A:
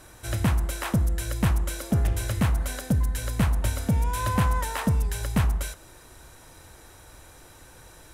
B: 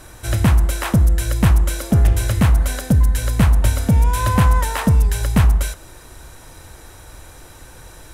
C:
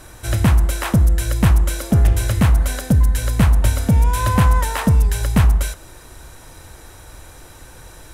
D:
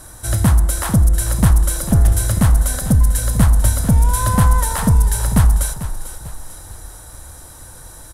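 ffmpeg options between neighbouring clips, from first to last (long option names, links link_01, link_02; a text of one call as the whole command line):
ffmpeg -i in.wav -af "lowshelf=frequency=78:gain=5.5,volume=7dB" out.wav
ffmpeg -i in.wav -af anull out.wav
ffmpeg -i in.wav -filter_complex "[0:a]equalizer=frequency=400:width_type=o:width=0.67:gain=-5,equalizer=frequency=2500:width_type=o:width=0.67:gain=-10,equalizer=frequency=10000:width_type=o:width=0.67:gain=9,asplit=6[link_01][link_02][link_03][link_04][link_05][link_06];[link_02]adelay=445,afreqshift=-31,volume=-12dB[link_07];[link_03]adelay=890,afreqshift=-62,volume=-18.7dB[link_08];[link_04]adelay=1335,afreqshift=-93,volume=-25.5dB[link_09];[link_05]adelay=1780,afreqshift=-124,volume=-32.2dB[link_10];[link_06]adelay=2225,afreqshift=-155,volume=-39dB[link_11];[link_01][link_07][link_08][link_09][link_10][link_11]amix=inputs=6:normalize=0,volume=1dB" out.wav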